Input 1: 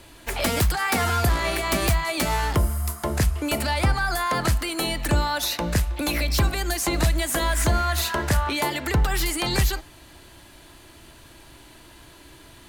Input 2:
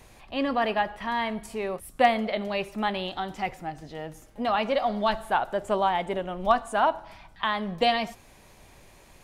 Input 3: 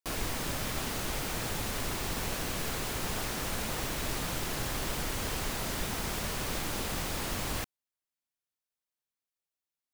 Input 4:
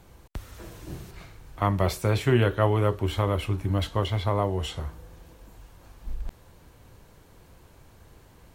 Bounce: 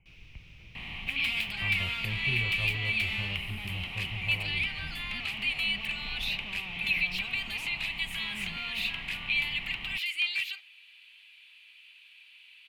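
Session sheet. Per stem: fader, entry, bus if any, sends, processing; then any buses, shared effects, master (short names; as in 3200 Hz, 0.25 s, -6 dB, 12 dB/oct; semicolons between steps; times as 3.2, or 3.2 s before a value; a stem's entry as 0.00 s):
-6.0 dB, 0.80 s, no send, HPF 1200 Hz 12 dB/oct; high shelf 2400 Hz +11 dB
-18.5 dB, 0.75 s, no send, per-bin compression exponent 0.4; comb 1 ms, depth 72%; fuzz box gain 35 dB, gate -35 dBFS
-16.5 dB, 0.00 s, no send, bell 5800 Hz +13.5 dB 0.49 oct
-2.5 dB, 0.00 s, no send, rippled Chebyshev low-pass 3100 Hz, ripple 9 dB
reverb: off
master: EQ curve 150 Hz 0 dB, 270 Hz -13 dB, 410 Hz -14 dB, 660 Hz -20 dB, 1000 Hz -18 dB, 1700 Hz -14 dB, 2500 Hz +8 dB, 6100 Hz -27 dB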